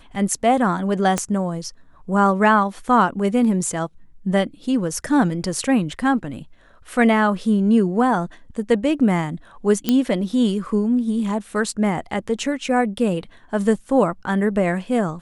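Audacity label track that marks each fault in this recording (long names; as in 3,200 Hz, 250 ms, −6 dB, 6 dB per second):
1.180000	1.180000	click −8 dBFS
9.890000	9.890000	click −5 dBFS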